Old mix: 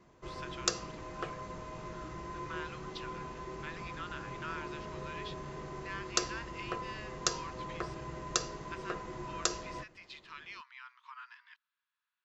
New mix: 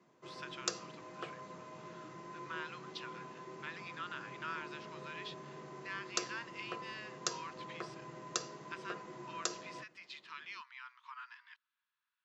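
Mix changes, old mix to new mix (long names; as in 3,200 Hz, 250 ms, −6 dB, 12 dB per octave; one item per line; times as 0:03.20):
background −5.5 dB
master: add high-pass filter 140 Hz 24 dB per octave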